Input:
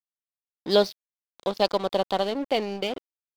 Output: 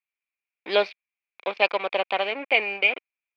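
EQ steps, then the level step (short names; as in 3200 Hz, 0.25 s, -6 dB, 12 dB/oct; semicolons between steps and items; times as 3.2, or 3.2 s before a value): HPF 470 Hz 12 dB/oct; synth low-pass 2400 Hz, resonance Q 12; 0.0 dB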